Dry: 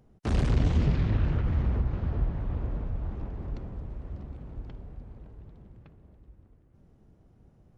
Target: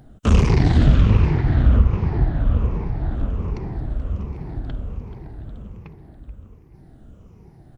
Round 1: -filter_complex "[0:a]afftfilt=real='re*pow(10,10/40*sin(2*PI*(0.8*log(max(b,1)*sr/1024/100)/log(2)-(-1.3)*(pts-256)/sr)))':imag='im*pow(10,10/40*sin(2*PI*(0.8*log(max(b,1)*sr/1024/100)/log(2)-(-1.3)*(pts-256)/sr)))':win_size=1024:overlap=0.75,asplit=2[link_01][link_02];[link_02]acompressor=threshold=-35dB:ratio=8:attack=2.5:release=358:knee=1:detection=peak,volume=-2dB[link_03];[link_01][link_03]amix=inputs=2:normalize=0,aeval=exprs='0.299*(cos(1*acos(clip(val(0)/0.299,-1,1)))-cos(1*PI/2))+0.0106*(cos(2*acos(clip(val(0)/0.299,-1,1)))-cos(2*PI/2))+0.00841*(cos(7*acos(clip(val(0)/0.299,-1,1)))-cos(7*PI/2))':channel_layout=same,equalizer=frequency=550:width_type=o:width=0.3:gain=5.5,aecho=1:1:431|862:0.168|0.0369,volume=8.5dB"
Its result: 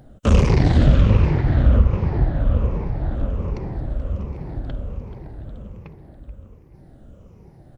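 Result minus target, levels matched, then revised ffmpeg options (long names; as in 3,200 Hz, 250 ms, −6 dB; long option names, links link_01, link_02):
500 Hz band +3.0 dB
-filter_complex "[0:a]afftfilt=real='re*pow(10,10/40*sin(2*PI*(0.8*log(max(b,1)*sr/1024/100)/log(2)-(-1.3)*(pts-256)/sr)))':imag='im*pow(10,10/40*sin(2*PI*(0.8*log(max(b,1)*sr/1024/100)/log(2)-(-1.3)*(pts-256)/sr)))':win_size=1024:overlap=0.75,asplit=2[link_01][link_02];[link_02]acompressor=threshold=-35dB:ratio=8:attack=2.5:release=358:knee=1:detection=peak,volume=-2dB[link_03];[link_01][link_03]amix=inputs=2:normalize=0,aeval=exprs='0.299*(cos(1*acos(clip(val(0)/0.299,-1,1)))-cos(1*PI/2))+0.0106*(cos(2*acos(clip(val(0)/0.299,-1,1)))-cos(2*PI/2))+0.00841*(cos(7*acos(clip(val(0)/0.299,-1,1)))-cos(7*PI/2))':channel_layout=same,equalizer=frequency=550:width_type=o:width=0.3:gain=-3.5,aecho=1:1:431|862:0.168|0.0369,volume=8.5dB"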